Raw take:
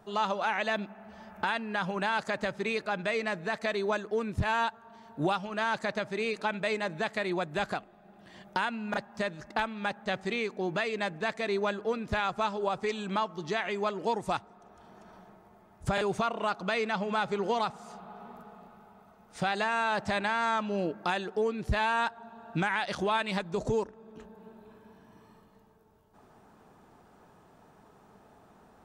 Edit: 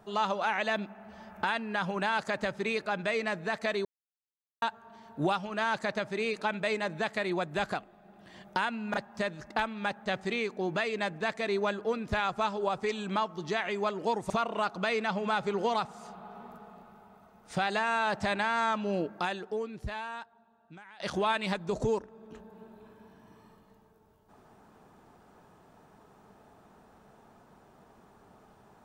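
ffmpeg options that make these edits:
ffmpeg -i in.wav -filter_complex "[0:a]asplit=5[link_01][link_02][link_03][link_04][link_05];[link_01]atrim=end=3.85,asetpts=PTS-STARTPTS,afade=type=out:start_time=3.846:duration=0.004:curve=hsin[link_06];[link_02]atrim=start=3.85:end=4.62,asetpts=PTS-STARTPTS,volume=0[link_07];[link_03]atrim=start=4.62:end=14.302,asetpts=PTS-STARTPTS,afade=type=in:duration=0.004:curve=hsin[link_08];[link_04]atrim=start=16.148:end=22.85,asetpts=PTS-STARTPTS,afade=type=out:start_time=4.722:duration=1.98:curve=qua:silence=0.0749894[link_09];[link_05]atrim=start=22.85,asetpts=PTS-STARTPTS,afade=type=in:duration=0.004:curve=hsin:silence=0.0749894[link_10];[link_06][link_07][link_08]concat=n=3:v=0:a=1[link_11];[link_09][link_10]concat=n=2:v=0:a=1[link_12];[link_11][link_12]acrossfade=duration=0.004:curve1=hsin:curve2=hsin" out.wav

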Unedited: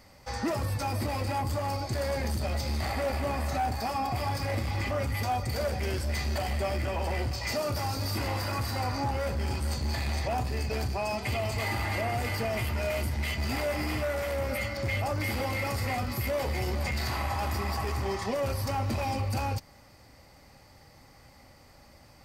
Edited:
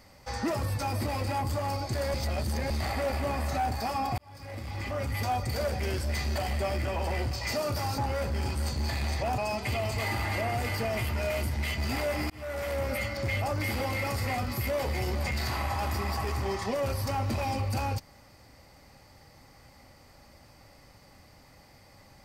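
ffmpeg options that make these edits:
ffmpeg -i in.wav -filter_complex "[0:a]asplit=7[link_01][link_02][link_03][link_04][link_05][link_06][link_07];[link_01]atrim=end=2.142[link_08];[link_02]atrim=start=2.138:end=2.702,asetpts=PTS-STARTPTS,areverse[link_09];[link_03]atrim=start=2.698:end=4.18,asetpts=PTS-STARTPTS,afade=type=out:start_time=1.478:duration=0.004:curve=hsin[link_10];[link_04]atrim=start=4.18:end=7.982,asetpts=PTS-STARTPTS,afade=type=in:duration=1.06[link_11];[link_05]atrim=start=9.028:end=10.432[link_12];[link_06]atrim=start=10.978:end=13.9,asetpts=PTS-STARTPTS,afade=type=out:start_time=2.918:duration=0.004:curve=hsin[link_13];[link_07]atrim=start=13.9,asetpts=PTS-STARTPTS,afade=type=in:duration=0.53:curve=qsin[link_14];[link_08][link_09]acrossfade=duration=0.004:curve1=hsin:curve2=hsin[link_15];[link_10][link_11]concat=n=2:v=0:a=1[link_16];[link_15][link_16]acrossfade=duration=0.004:curve1=hsin:curve2=hsin[link_17];[link_17][link_12]acrossfade=duration=0.004:curve1=hsin:curve2=hsin[link_18];[link_13][link_14]concat=n=2:v=0:a=1[link_19];[link_18][link_19]acrossfade=duration=0.004:curve1=hsin:curve2=hsin" out.wav

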